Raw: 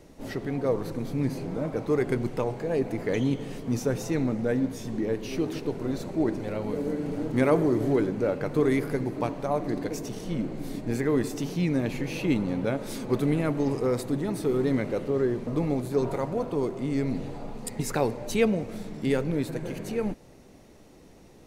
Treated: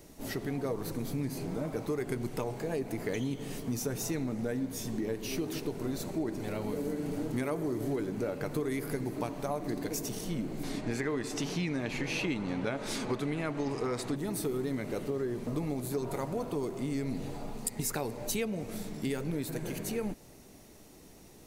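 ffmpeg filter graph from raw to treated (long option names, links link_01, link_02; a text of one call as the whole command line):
ffmpeg -i in.wav -filter_complex "[0:a]asettb=1/sr,asplit=3[link_01][link_02][link_03];[link_01]atrim=end=10.634[link_04];[link_02]atrim=start=10.63:end=14.16,asetpts=PTS-STARTPTS,afade=type=in:duration=0.004:curve=qsin,afade=type=out:start_time=3.526:duration=0.004:curve=qsin,lowpass=7200,equalizer=frequency=1600:width=0.38:gain=7[link_05];[link_03]atrim=start=14.156[link_06];[link_04][link_05]acrossfade=duration=0.004:curve1=hsin:curve2=qsin[link_07];[link_07][link_06]acrossfade=duration=0.004:curve1=qsin:curve2=hsin,aemphasis=mode=production:type=50kf,bandreject=frequency=520:width=12,acompressor=threshold=-27dB:ratio=6,volume=-2.5dB" out.wav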